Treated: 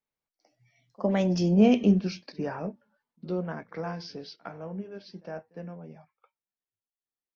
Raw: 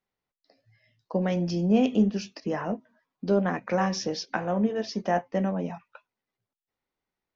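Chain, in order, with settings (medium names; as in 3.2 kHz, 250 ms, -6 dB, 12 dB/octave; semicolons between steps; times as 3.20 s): Doppler pass-by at 1.49 s, 37 m/s, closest 21 m; pre-echo 58 ms -23.5 dB; trim +2.5 dB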